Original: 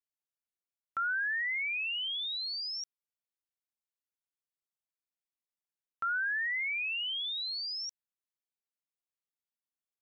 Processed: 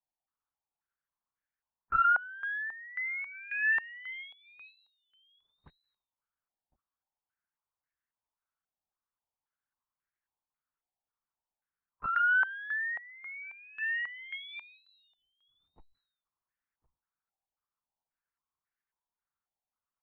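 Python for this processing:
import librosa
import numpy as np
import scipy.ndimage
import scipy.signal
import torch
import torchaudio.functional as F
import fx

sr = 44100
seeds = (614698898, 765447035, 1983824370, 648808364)

p1 = fx.low_shelf(x, sr, hz=240.0, db=-10.5)
p2 = fx.notch(p1, sr, hz=820.0, q=18.0)
p3 = fx.clip_asym(p2, sr, top_db=-50.5, bottom_db=-31.5)
p4 = fx.stretch_vocoder(p3, sr, factor=2.0)
p5 = p4 + fx.echo_single(p4, sr, ms=1061, db=-20.5, dry=0)
p6 = fx.lpc_vocoder(p5, sr, seeds[0], excitation='whisper', order=10)
p7 = fx.filter_held_lowpass(p6, sr, hz=3.7, low_hz=770.0, high_hz=1700.0)
y = p7 * librosa.db_to_amplitude(3.5)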